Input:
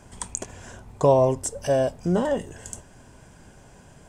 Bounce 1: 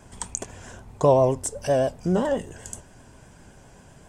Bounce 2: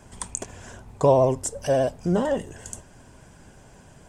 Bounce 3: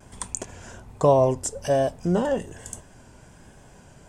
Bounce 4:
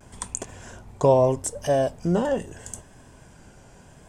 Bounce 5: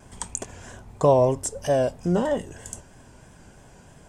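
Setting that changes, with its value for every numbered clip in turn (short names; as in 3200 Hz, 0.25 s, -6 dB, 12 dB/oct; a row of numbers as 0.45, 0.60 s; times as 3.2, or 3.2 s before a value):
vibrato, rate: 7.7, 15, 1.2, 0.77, 3.1 Hz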